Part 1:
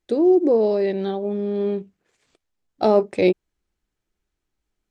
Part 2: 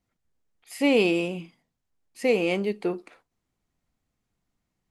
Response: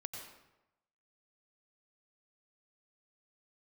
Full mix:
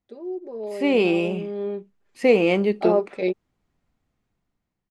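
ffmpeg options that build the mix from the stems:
-filter_complex "[0:a]highpass=frequency=370:poles=1,aecho=1:1:5:0.74,volume=-16.5dB[link_01];[1:a]volume=-4dB[link_02];[link_01][link_02]amix=inputs=2:normalize=0,lowpass=frequency=2800:poles=1,dynaudnorm=framelen=420:gausssize=5:maxgain=10.5dB"

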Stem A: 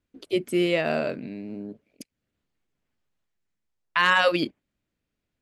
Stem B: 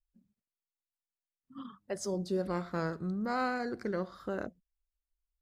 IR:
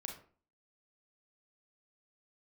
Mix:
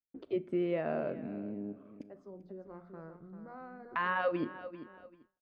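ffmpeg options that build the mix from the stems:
-filter_complex "[0:a]volume=1dB,asplit=3[link_01][link_02][link_03];[link_02]volume=-11.5dB[link_04];[link_03]volume=-17.5dB[link_05];[1:a]bandreject=frequency=60:width_type=h:width=6,bandreject=frequency=120:width_type=h:width=6,bandreject=frequency=180:width_type=h:width=6,bandreject=frequency=240:width_type=h:width=6,adelay=200,volume=-13dB,asplit=3[link_06][link_07][link_08];[link_07]volume=-12dB[link_09];[link_08]volume=-8dB[link_10];[2:a]atrim=start_sample=2205[link_11];[link_04][link_09]amix=inputs=2:normalize=0[link_12];[link_12][link_11]afir=irnorm=-1:irlink=0[link_13];[link_05][link_10]amix=inputs=2:normalize=0,aecho=0:1:391|782|1173:1|0.17|0.0289[link_14];[link_01][link_06][link_13][link_14]amix=inputs=4:normalize=0,lowpass=1300,agate=range=-33dB:threshold=-52dB:ratio=3:detection=peak,acompressor=threshold=-49dB:ratio=1.5"

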